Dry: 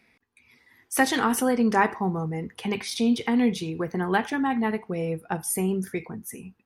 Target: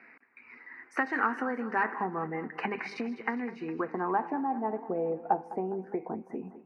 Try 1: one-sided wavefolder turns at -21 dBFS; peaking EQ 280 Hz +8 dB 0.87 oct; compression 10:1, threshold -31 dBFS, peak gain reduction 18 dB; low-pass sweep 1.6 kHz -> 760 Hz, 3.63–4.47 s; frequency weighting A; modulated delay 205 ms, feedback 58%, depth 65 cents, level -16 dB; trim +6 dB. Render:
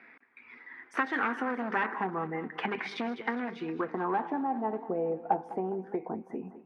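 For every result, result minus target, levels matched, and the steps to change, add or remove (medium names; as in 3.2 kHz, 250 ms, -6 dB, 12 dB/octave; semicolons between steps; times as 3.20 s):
one-sided wavefolder: distortion +13 dB; 4 kHz band +6.5 dB
change: one-sided wavefolder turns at -14 dBFS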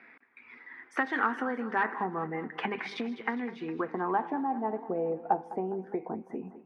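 4 kHz band +6.0 dB
add after compression: Butterworth band-stop 3.4 kHz, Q 3.1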